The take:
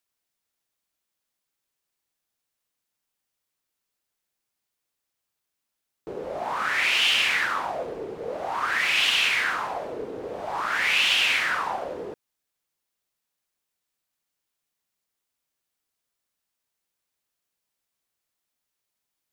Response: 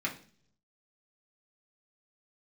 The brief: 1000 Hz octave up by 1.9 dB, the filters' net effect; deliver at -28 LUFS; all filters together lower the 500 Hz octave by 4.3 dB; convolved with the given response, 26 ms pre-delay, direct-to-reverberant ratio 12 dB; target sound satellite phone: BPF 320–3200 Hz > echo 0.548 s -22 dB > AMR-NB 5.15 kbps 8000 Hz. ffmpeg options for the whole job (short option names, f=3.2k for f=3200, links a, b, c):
-filter_complex "[0:a]equalizer=f=500:t=o:g=-6,equalizer=f=1k:t=o:g=4,asplit=2[a][b];[1:a]atrim=start_sample=2205,adelay=26[c];[b][c]afir=irnorm=-1:irlink=0,volume=-17.5dB[d];[a][d]amix=inputs=2:normalize=0,highpass=320,lowpass=3.2k,aecho=1:1:548:0.0794,volume=-0.5dB" -ar 8000 -c:a libopencore_amrnb -b:a 5150